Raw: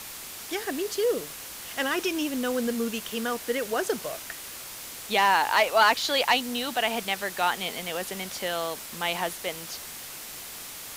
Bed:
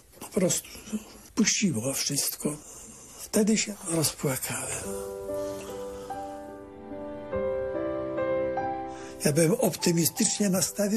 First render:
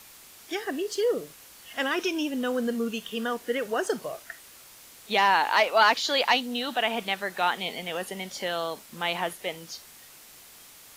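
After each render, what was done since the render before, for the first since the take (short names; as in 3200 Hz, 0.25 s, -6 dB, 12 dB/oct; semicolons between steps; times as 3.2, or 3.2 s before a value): noise print and reduce 10 dB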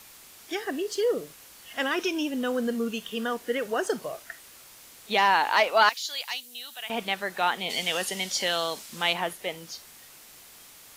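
5.89–6.9 pre-emphasis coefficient 0.97; 7.69–9.12 bell 5700 Hz +14 dB -> +7 dB 2.5 oct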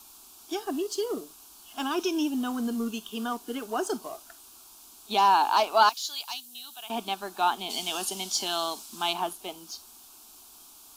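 fixed phaser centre 520 Hz, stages 6; in parallel at -9 dB: crossover distortion -41.5 dBFS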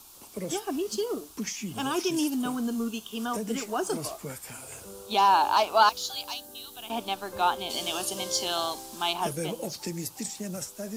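add bed -10.5 dB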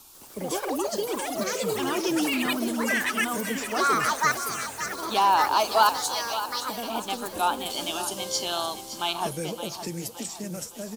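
echoes that change speed 0.149 s, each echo +6 st, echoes 3; on a send: feedback echo 0.566 s, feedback 43%, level -11.5 dB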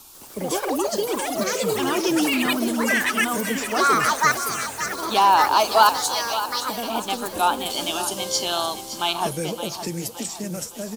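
gain +4.5 dB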